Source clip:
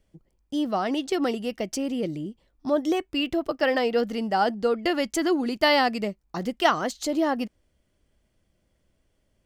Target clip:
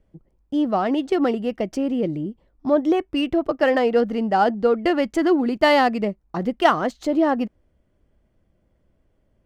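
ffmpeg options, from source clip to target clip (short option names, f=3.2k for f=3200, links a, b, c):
-filter_complex "[0:a]highshelf=f=2.9k:g=-10.5,asplit=2[a][b];[b]adynamicsmooth=sensitivity=7.5:basefreq=2.6k,volume=-1dB[c];[a][c]amix=inputs=2:normalize=0"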